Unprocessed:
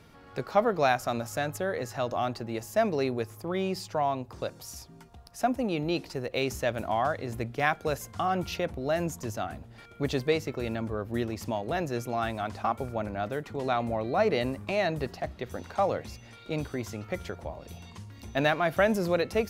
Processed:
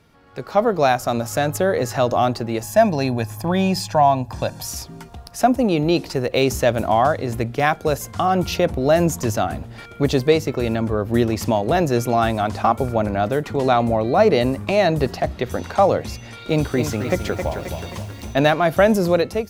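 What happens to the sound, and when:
0:02.63–0:04.67: comb filter 1.2 ms
0:16.22–0:18.34: feedback echo at a low word length 265 ms, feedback 55%, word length 9 bits, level −8 dB
whole clip: dynamic equaliser 2,000 Hz, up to −5 dB, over −41 dBFS, Q 0.78; automatic gain control gain up to 15.5 dB; level −1.5 dB

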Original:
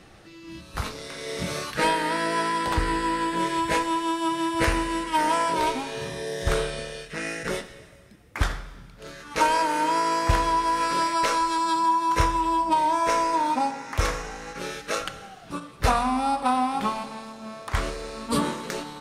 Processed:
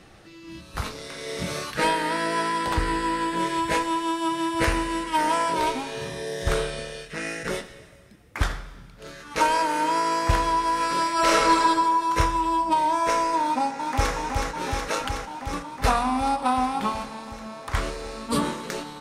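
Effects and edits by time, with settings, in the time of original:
0:11.13–0:11.58: thrown reverb, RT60 1.6 s, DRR −6 dB
0:13.42–0:14.14: delay throw 370 ms, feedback 80%, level −4 dB

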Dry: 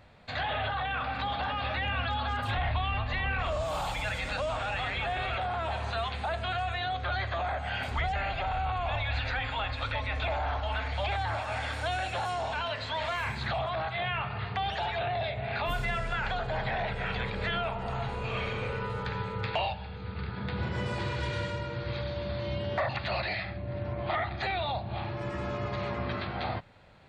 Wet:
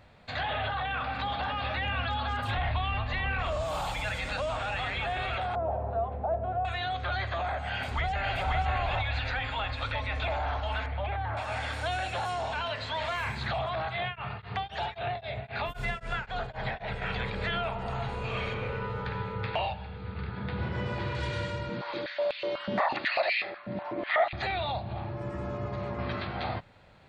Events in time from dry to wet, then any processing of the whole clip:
0:05.55–0:06.65: low-pass with resonance 610 Hz, resonance Q 2.2
0:07.70–0:08.48: delay throw 530 ms, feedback 15%, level −2 dB
0:10.86–0:11.37: high-frequency loss of the air 490 metres
0:14.03–0:17.02: tremolo along a rectified sine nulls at 3.8 Hz
0:18.54–0:21.15: Bessel low-pass filter 3,500 Hz
0:21.69–0:24.33: high-pass on a step sequencer 8.1 Hz 210–2,600 Hz
0:24.93–0:25.99: parametric band 3,500 Hz −9.5 dB 2.5 octaves

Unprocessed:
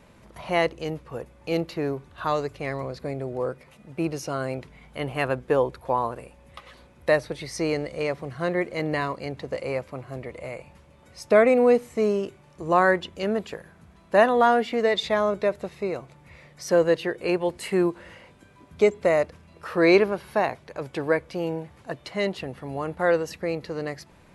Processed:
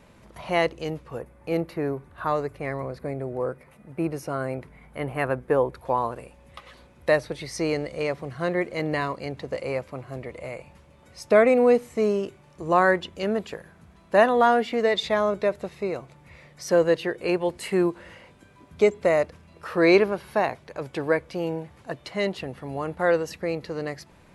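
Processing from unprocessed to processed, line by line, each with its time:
0:01.19–0:05.75: flat-topped bell 4,500 Hz −8.5 dB

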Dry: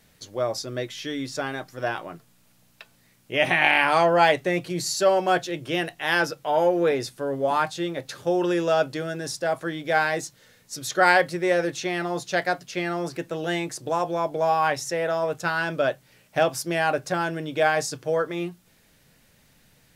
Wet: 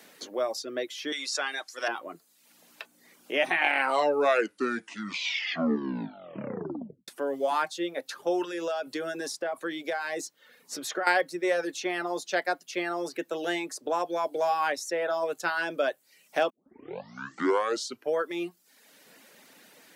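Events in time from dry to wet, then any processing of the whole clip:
0:01.12–0:01.88: meter weighting curve ITU-R 468
0:03.60: tape stop 3.48 s
0:08.42–0:11.07: downward compressor, threshold −25 dBFS
0:16.50: tape start 1.64 s
whole clip: high-pass filter 250 Hz 24 dB per octave; reverb reduction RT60 0.62 s; multiband upward and downward compressor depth 40%; level −3 dB

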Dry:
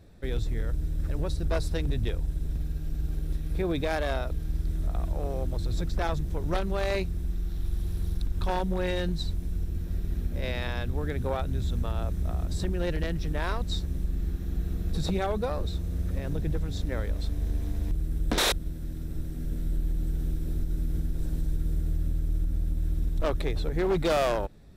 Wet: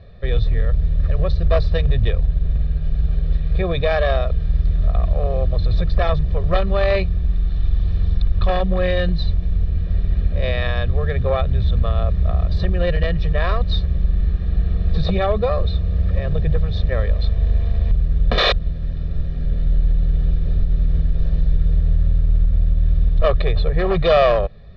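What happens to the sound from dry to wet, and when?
0:02.27–0:02.82: high-frequency loss of the air 61 metres
whole clip: Butterworth low-pass 4,300 Hz 36 dB per octave; comb filter 1.7 ms, depth 93%; level +6.5 dB

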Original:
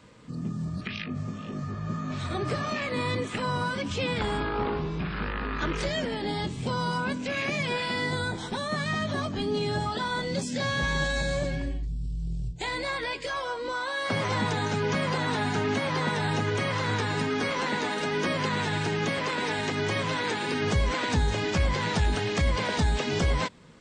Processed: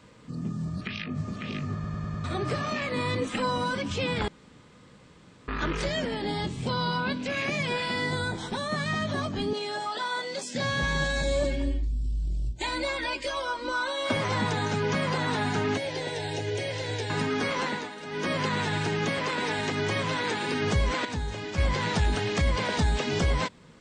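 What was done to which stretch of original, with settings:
0:00.62–0:01.19: delay throw 550 ms, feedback 55%, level −4.5 dB
0:01.74: stutter in place 0.10 s, 5 plays
0:03.21–0:03.75: comb filter 3.8 ms
0:04.28–0:05.48: fill with room tone
0:06.69–0:07.23: high shelf with overshoot 5,400 Hz −8.5 dB, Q 3
0:09.53–0:10.55: high-pass filter 480 Hz
0:11.23–0:14.17: comb filter 3.3 ms, depth 79%
0:15.77–0:17.10: phaser with its sweep stopped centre 490 Hz, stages 4
0:17.63–0:18.33: duck −11 dB, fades 0.28 s
0:21.05–0:21.58: clip gain −7 dB

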